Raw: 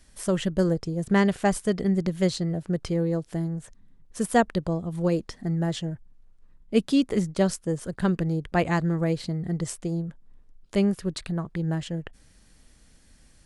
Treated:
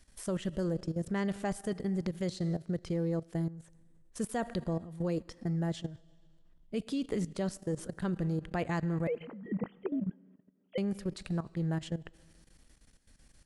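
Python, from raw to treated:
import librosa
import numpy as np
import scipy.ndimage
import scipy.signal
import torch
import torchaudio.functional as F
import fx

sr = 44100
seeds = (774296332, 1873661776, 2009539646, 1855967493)

y = fx.sine_speech(x, sr, at=(9.07, 10.78))
y = fx.rev_freeverb(y, sr, rt60_s=1.7, hf_ratio=0.95, predelay_ms=0, drr_db=19.0)
y = fx.level_steps(y, sr, step_db=14)
y = y * librosa.db_to_amplitude(-3.0)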